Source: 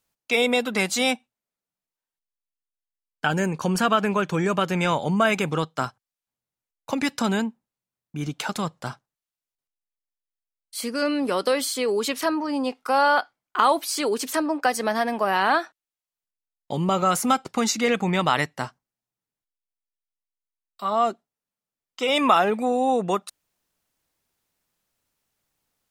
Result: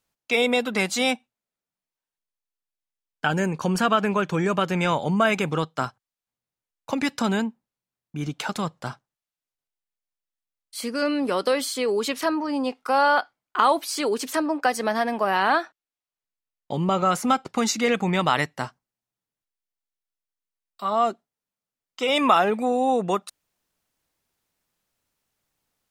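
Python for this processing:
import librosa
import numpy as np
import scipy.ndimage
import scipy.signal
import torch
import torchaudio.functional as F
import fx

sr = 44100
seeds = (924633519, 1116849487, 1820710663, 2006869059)

y = fx.high_shelf(x, sr, hz=7100.0, db=fx.steps((0.0, -4.5), (15.61, -10.5), (17.54, -2.0)))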